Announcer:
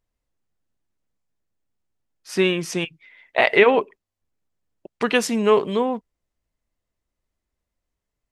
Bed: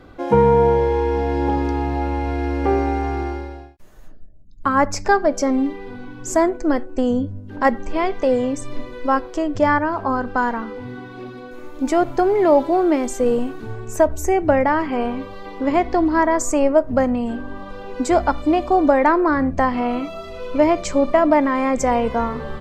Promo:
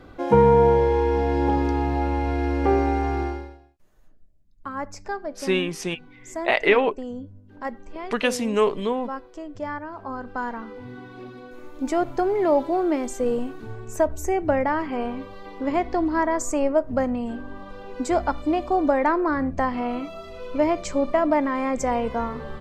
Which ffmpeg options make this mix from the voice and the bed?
ffmpeg -i stem1.wav -i stem2.wav -filter_complex "[0:a]adelay=3100,volume=-3.5dB[link_01];[1:a]volume=7.5dB,afade=type=out:start_time=3.24:duration=0.35:silence=0.223872,afade=type=in:start_time=9.87:duration=1.19:silence=0.354813[link_02];[link_01][link_02]amix=inputs=2:normalize=0" out.wav

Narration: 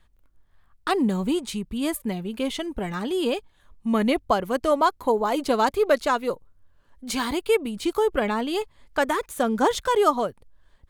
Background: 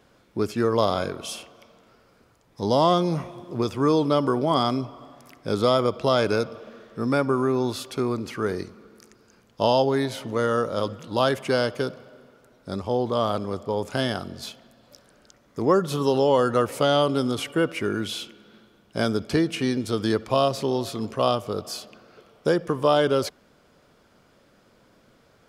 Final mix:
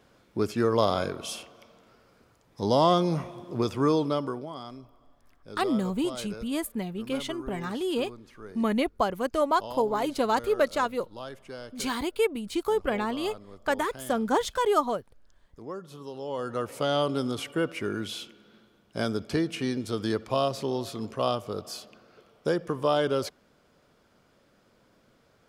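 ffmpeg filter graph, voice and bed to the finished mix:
ffmpeg -i stem1.wav -i stem2.wav -filter_complex "[0:a]adelay=4700,volume=-4dB[link_01];[1:a]volume=11.5dB,afade=type=out:start_time=3.8:duration=0.72:silence=0.149624,afade=type=in:start_time=16.17:duration=0.85:silence=0.211349[link_02];[link_01][link_02]amix=inputs=2:normalize=0" out.wav

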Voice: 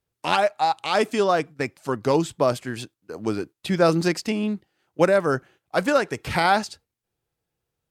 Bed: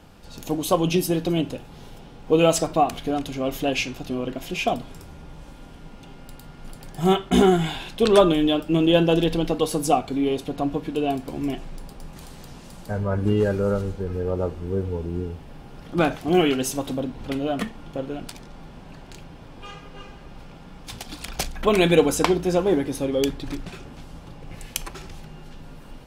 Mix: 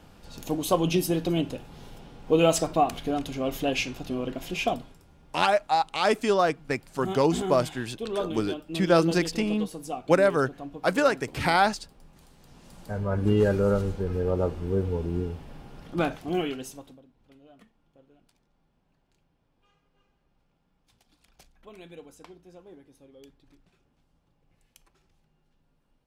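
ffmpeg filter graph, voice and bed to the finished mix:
ffmpeg -i stem1.wav -i stem2.wav -filter_complex "[0:a]adelay=5100,volume=-2dB[link_01];[1:a]volume=11dB,afade=type=out:start_time=4.67:duration=0.3:silence=0.266073,afade=type=in:start_time=12.4:duration=1.05:silence=0.199526,afade=type=out:start_time=15.16:duration=1.85:silence=0.0375837[link_02];[link_01][link_02]amix=inputs=2:normalize=0" out.wav

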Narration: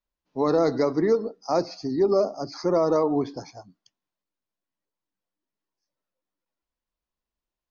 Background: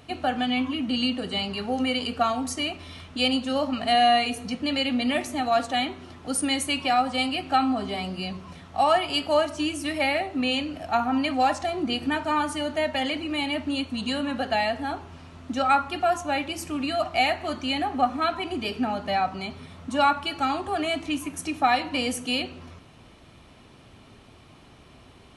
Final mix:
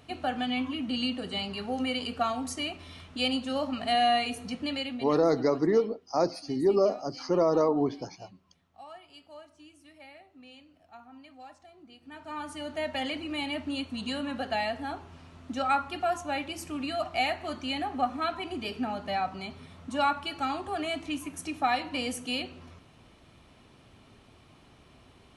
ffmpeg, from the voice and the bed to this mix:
ffmpeg -i stem1.wav -i stem2.wav -filter_complex "[0:a]adelay=4650,volume=-2.5dB[link_01];[1:a]volume=16dB,afade=type=out:start_time=4.63:duration=0.56:silence=0.0841395,afade=type=in:start_time=12.03:duration=0.95:silence=0.0891251[link_02];[link_01][link_02]amix=inputs=2:normalize=0" out.wav

